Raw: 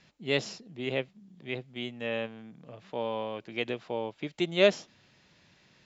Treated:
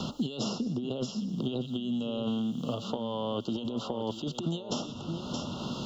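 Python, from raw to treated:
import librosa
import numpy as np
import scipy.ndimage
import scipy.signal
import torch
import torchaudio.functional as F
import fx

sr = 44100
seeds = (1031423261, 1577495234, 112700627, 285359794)

y = scipy.signal.sosfilt(scipy.signal.cheby1(5, 1.0, [1400.0, 2800.0], 'bandstop', fs=sr, output='sos'), x)
y = fx.peak_eq(y, sr, hz=240.0, db=10.0, octaves=0.27)
y = fx.echo_wet_highpass(y, sr, ms=120, feedback_pct=36, hz=3600.0, wet_db=-16)
y = fx.over_compress(y, sr, threshold_db=-40.0, ratio=-1.0)
y = y + 10.0 ** (-14.0 / 20.0) * np.pad(y, (int(620 * sr / 1000.0), 0))[:len(y)]
y = fx.band_squash(y, sr, depth_pct=100)
y = y * librosa.db_to_amplitude(6.0)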